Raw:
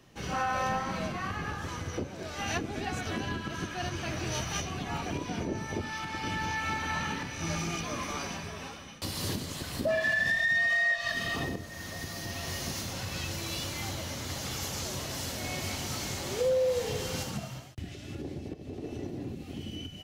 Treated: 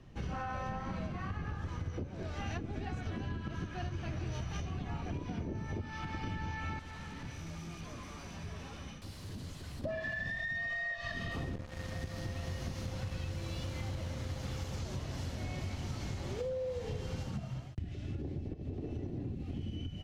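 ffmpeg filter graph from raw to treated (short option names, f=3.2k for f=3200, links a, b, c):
-filter_complex "[0:a]asettb=1/sr,asplit=3[a][b][c];[a]atrim=end=6.794[d];[b]atrim=start=6.79:end=9.84,asetpts=PTS-STARTPTS,afade=t=in:d=0.004:c=qsin,afade=t=out:st=3.046:d=0.004:c=qsin,highshelf=f=5.1k:g=9.5,acompressor=threshold=-39dB:ratio=5:attack=3.2:release=140:knee=1:detection=peak,aeval=exprs='0.0106*(abs(mod(val(0)/0.0106+3,4)-2)-1)':c=same[e];[c]atrim=start=9.836[f];[d][e]acrossfade=d=0.004:c1=hsin:c2=qsin[g];[g][f]acrossfade=d=0.004:c1=qsin:c2=hsin,asettb=1/sr,asplit=3[h][i][j];[h]atrim=end=11.314[k];[i]atrim=start=11.31:end=14.78,asetpts=PTS-STARTPTS,afade=t=in:d=0.004:c=qsin,afade=t=out:st=3.466:d=0.004:c=qsin,aeval=exprs='val(0)+0.00631*sin(2*PI*520*n/s)':c=same,acrusher=bits=5:mix=0:aa=0.5[l];[j]atrim=start=14.776[m];[k][l]acrossfade=d=0.004:c1=hsin:c2=qsin[n];[n][m]acrossfade=d=0.004:c1=qsin:c2=hsin,aemphasis=mode=reproduction:type=bsi,acompressor=threshold=-33dB:ratio=4,volume=-3dB"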